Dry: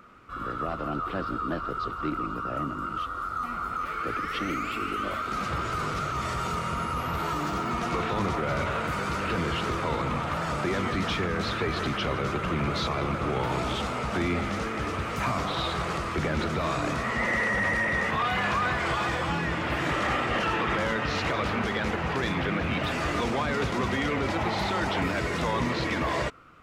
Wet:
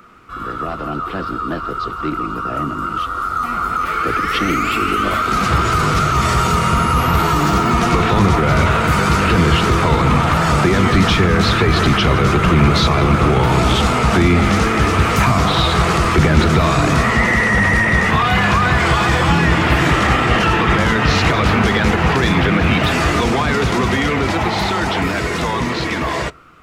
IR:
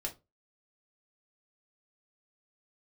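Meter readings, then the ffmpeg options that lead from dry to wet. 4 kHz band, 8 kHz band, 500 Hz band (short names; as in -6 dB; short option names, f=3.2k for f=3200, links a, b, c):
+13.5 dB, +15.0 dB, +11.5 dB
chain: -filter_complex "[0:a]highshelf=f=5.5k:g=4.5,asplit=2[a][b];[1:a]atrim=start_sample=2205[c];[b][c]afir=irnorm=-1:irlink=0,volume=-16.5dB[d];[a][d]amix=inputs=2:normalize=0,dynaudnorm=f=990:g=9:m=12dB,bandreject=f=560:w=12,acrossover=split=190[e][f];[f]acompressor=threshold=-21dB:ratio=4[g];[e][g]amix=inputs=2:normalize=0,volume=6.5dB"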